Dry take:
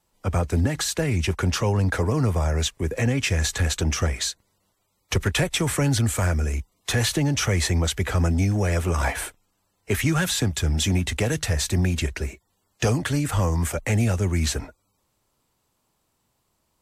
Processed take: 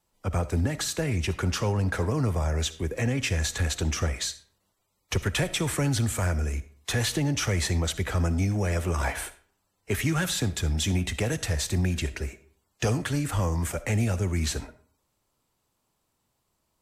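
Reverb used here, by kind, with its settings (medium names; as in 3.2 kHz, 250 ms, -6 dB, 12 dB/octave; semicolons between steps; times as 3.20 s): algorithmic reverb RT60 0.51 s, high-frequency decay 0.7×, pre-delay 20 ms, DRR 14.5 dB; trim -4 dB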